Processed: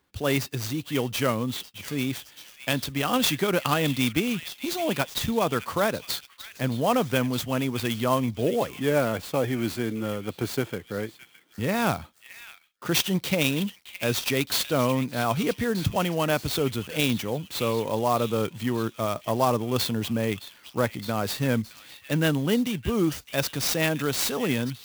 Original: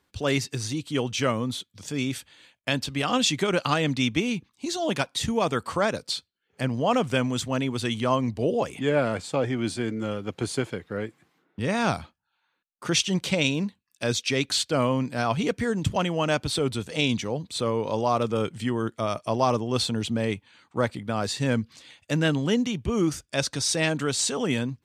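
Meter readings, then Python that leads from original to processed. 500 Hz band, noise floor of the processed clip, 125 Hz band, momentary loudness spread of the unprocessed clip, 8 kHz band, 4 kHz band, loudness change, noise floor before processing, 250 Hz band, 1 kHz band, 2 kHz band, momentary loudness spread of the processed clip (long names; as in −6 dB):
0.0 dB, −55 dBFS, 0.0 dB, 8 LU, −1.5 dB, −1.0 dB, 0.0 dB, −75 dBFS, 0.0 dB, 0.0 dB, 0.0 dB, 8 LU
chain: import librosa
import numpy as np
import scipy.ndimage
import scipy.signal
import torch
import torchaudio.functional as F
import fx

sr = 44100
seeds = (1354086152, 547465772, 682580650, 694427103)

y = fx.echo_stepped(x, sr, ms=616, hz=2600.0, octaves=0.7, feedback_pct=70, wet_db=-9.5)
y = fx.clock_jitter(y, sr, seeds[0], jitter_ms=0.027)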